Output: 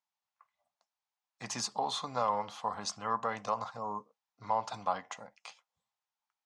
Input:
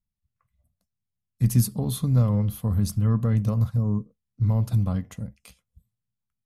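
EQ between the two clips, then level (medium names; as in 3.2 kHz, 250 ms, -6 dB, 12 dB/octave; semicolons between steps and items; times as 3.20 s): resonant high-pass 850 Hz, resonance Q 3.8; steep low-pass 7 kHz 36 dB/octave; +2.5 dB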